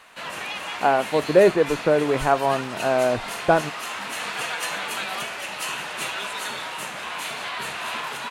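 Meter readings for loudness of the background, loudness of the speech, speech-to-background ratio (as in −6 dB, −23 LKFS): −29.5 LKFS, −21.0 LKFS, 8.5 dB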